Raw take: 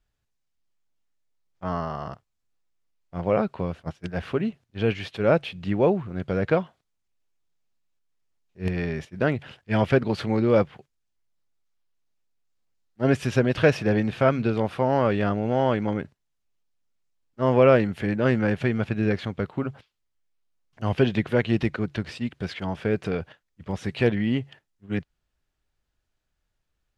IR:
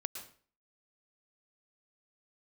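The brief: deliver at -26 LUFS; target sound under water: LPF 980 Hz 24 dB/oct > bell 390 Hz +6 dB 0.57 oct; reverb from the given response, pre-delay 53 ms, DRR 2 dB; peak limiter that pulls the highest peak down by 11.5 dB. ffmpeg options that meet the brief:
-filter_complex "[0:a]alimiter=limit=-16dB:level=0:latency=1,asplit=2[a][b];[1:a]atrim=start_sample=2205,adelay=53[c];[b][c]afir=irnorm=-1:irlink=0,volume=-1.5dB[d];[a][d]amix=inputs=2:normalize=0,lowpass=f=980:w=0.5412,lowpass=f=980:w=1.3066,equalizer=f=390:t=o:w=0.57:g=6,volume=-0.5dB"

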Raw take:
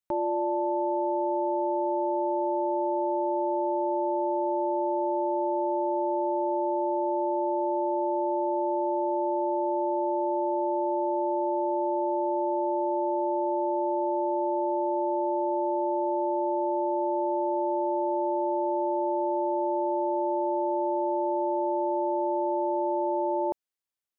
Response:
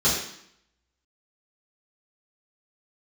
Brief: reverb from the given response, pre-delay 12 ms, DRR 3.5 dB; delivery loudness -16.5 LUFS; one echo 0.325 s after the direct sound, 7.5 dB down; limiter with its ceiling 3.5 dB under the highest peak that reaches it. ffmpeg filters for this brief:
-filter_complex "[0:a]alimiter=limit=-23dB:level=0:latency=1,aecho=1:1:325:0.422,asplit=2[a][b];[1:a]atrim=start_sample=2205,adelay=12[c];[b][c]afir=irnorm=-1:irlink=0,volume=-18.5dB[d];[a][d]amix=inputs=2:normalize=0,volume=15dB"

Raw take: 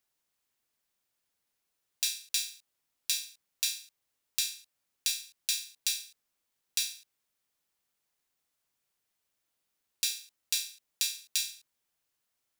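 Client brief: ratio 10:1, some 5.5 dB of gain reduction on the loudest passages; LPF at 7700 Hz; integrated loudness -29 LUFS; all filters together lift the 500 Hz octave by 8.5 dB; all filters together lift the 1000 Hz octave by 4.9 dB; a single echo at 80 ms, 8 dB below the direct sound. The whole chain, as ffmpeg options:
-af "lowpass=7.7k,equalizer=f=500:t=o:g=8.5,equalizer=f=1k:t=o:g=4,acompressor=threshold=-32dB:ratio=10,aecho=1:1:80:0.398,volume=9.5dB"

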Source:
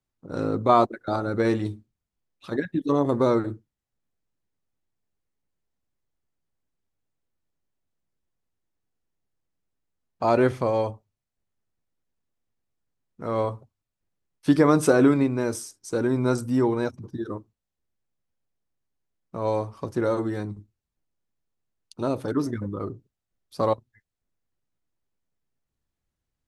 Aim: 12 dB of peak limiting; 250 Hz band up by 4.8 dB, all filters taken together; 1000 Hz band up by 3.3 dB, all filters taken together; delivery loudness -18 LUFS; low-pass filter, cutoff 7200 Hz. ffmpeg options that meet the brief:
-af "lowpass=7.2k,equalizer=f=250:t=o:g=5.5,equalizer=f=1k:t=o:g=4,volume=8dB,alimiter=limit=-6dB:level=0:latency=1"

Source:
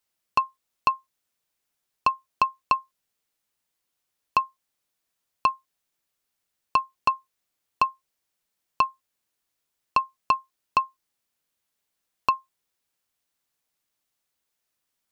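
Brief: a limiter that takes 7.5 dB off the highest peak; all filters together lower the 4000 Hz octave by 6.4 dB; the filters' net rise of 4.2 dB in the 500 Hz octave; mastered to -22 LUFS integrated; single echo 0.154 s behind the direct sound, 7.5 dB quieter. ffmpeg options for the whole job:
-af "equalizer=f=500:t=o:g=5.5,equalizer=f=4k:t=o:g=-8.5,alimiter=limit=-15dB:level=0:latency=1,aecho=1:1:154:0.422,volume=10.5dB"

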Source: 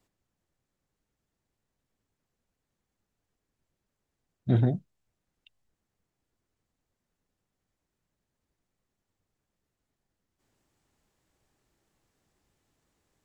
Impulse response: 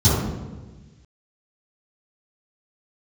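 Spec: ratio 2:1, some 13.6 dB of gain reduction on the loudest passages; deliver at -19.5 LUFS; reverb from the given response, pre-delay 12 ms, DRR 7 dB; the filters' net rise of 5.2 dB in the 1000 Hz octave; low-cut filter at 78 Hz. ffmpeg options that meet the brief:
-filter_complex "[0:a]highpass=78,equalizer=f=1k:t=o:g=8.5,acompressor=threshold=-44dB:ratio=2,asplit=2[a][b];[1:a]atrim=start_sample=2205,adelay=12[c];[b][c]afir=irnorm=-1:irlink=0,volume=-26.5dB[d];[a][d]amix=inputs=2:normalize=0,volume=14.5dB"

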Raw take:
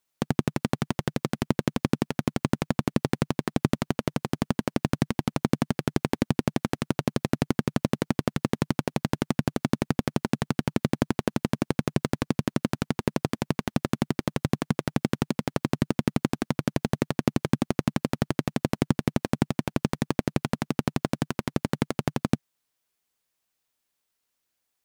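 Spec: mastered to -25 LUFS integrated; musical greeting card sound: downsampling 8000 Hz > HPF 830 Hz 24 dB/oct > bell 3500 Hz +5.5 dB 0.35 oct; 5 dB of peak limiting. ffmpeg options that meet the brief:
-af "alimiter=limit=-11dB:level=0:latency=1,aresample=8000,aresample=44100,highpass=f=830:w=0.5412,highpass=f=830:w=1.3066,equalizer=f=3.5k:t=o:w=0.35:g=5.5,volume=15.5dB"

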